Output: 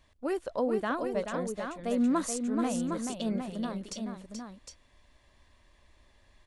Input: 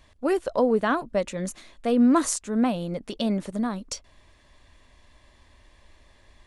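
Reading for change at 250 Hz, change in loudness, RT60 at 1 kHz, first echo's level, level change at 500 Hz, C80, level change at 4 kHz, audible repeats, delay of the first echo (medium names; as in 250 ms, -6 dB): -6.5 dB, -7.0 dB, no reverb, -6.5 dB, -6.5 dB, no reverb, -6.5 dB, 2, 430 ms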